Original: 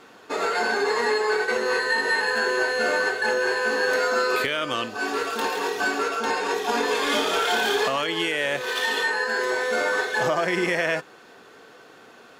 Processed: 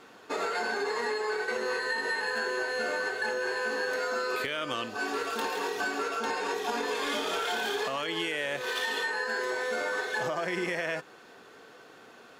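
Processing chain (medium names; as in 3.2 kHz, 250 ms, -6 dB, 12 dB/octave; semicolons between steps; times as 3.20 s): compression, threshold -24 dBFS, peak gain reduction 6 dB; trim -3.5 dB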